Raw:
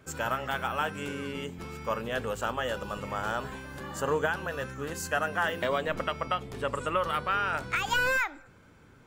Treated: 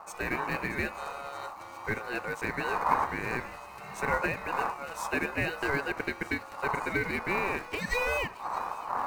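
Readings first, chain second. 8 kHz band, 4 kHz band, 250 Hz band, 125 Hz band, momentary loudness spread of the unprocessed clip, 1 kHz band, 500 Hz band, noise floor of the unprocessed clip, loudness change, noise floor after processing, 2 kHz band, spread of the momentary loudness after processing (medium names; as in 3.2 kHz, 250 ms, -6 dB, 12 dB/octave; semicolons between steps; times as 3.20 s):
-4.5 dB, -6.0 dB, +1.5 dB, -1.5 dB, 8 LU, 0.0 dB, -3.0 dB, -56 dBFS, -1.0 dB, -45 dBFS, -0.5 dB, 10 LU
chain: wind noise 190 Hz -32 dBFS; dynamic bell 780 Hz, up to +6 dB, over -41 dBFS, Q 1; in parallel at -10 dB: companded quantiser 4-bit; on the sum: Butterworth band-stop 2.4 kHz, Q 3.3; on a send: feedback echo behind a high-pass 624 ms, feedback 79%, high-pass 2.7 kHz, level -13.5 dB; on the sum: ring modulator 980 Hz; trim -5 dB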